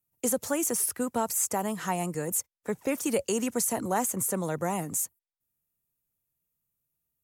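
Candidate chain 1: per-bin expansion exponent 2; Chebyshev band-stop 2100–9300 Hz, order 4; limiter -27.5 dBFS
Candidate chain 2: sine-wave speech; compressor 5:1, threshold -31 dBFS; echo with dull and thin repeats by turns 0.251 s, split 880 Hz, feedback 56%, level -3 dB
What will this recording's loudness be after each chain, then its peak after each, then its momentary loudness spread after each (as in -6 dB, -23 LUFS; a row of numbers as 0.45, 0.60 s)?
-37.5, -35.0 LUFS; -27.5, -19.5 dBFS; 5, 10 LU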